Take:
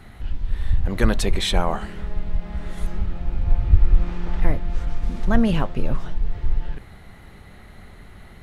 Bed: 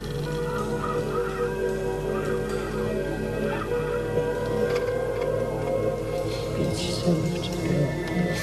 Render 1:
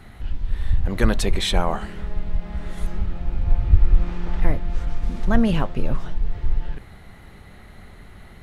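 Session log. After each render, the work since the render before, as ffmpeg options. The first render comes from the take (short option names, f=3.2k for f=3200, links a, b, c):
-af anull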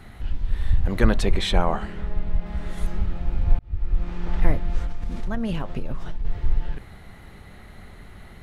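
-filter_complex "[0:a]asettb=1/sr,asplit=3[a][b][c];[a]atrim=end=0.994[d];[b]atrim=start=0.99:end=2.46,asetpts=PTS-STARTPTS,afade=t=in:d=0.004:c=qsin,afade=t=out:st=1.466:d=0.004:c=qsin,aemphasis=mode=reproduction:type=cd[e];[c]atrim=start=2.456[f];[d][e]acrossfade=d=0.004:c1=hsin:c2=qsin[g];[g][f]acrossfade=d=0.004:c1=qsin:c2=hsin,asettb=1/sr,asplit=3[h][i][j];[h]atrim=end=4.854[k];[i]atrim=start=4.85:end=6.25,asetpts=PTS-STARTPTS,afade=t=in:d=0.004:c=qsin,afade=t=out:st=1.396:d=0.004:c=qsin,acompressor=threshold=-22dB:ratio=4:attack=3.2:release=140:knee=1:detection=peak[l];[j]atrim=start=6.246[m];[k][l]acrossfade=d=0.004:c1=hsin:c2=qsin[n];[n][m]acrossfade=d=0.004:c1=qsin:c2=hsin,asplit=2[o][p];[o]atrim=end=3.59,asetpts=PTS-STARTPTS,afade=t=out:st=3.586:d=0.004:c=hsin[q];[p]atrim=start=3.59,asetpts=PTS-STARTPTS,afade=t=in:d=0.76[r];[q][r]concat=n=2:v=0:a=1"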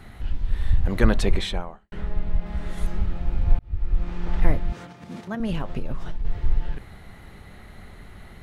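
-filter_complex "[0:a]asettb=1/sr,asplit=3[a][b][c];[a]atrim=end=4.724[d];[b]atrim=start=4.72:end=5.4,asetpts=PTS-STARTPTS,afade=t=in:d=0.004:c=qsin,afade=t=out:st=0.676:d=0.004:c=qsin,highpass=f=130:w=0.5412,highpass=f=130:w=1.3066[e];[c]atrim=start=5.396[f];[d][e]acrossfade=d=0.004:c1=hsin:c2=qsin[g];[g][f]acrossfade=d=0.004:c1=qsin:c2=hsin,asplit=2[h][i];[h]atrim=end=1.92,asetpts=PTS-STARTPTS,afade=t=out:st=1.35:d=0.57:c=qua[j];[i]atrim=start=1.92,asetpts=PTS-STARTPTS,afade=t=in:d=0.004:c=hsin[k];[j][k]concat=n=2:v=0:a=1"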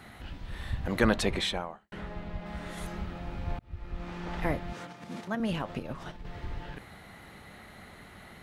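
-af "highpass=f=240:p=1,equalizer=f=400:t=o:w=0.24:g=-4"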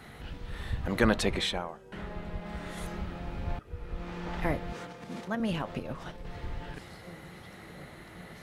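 -filter_complex "[1:a]volume=-25.5dB[a];[0:a][a]amix=inputs=2:normalize=0"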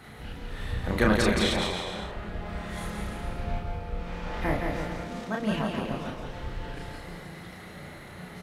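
-filter_complex "[0:a]asplit=2[a][b];[b]adelay=33,volume=-2dB[c];[a][c]amix=inputs=2:normalize=0,asplit=2[d][e];[e]aecho=0:1:170|306|414.8|501.8|571.5:0.631|0.398|0.251|0.158|0.1[f];[d][f]amix=inputs=2:normalize=0"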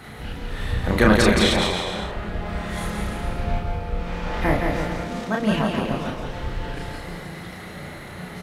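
-af "volume=7dB,alimiter=limit=-3dB:level=0:latency=1"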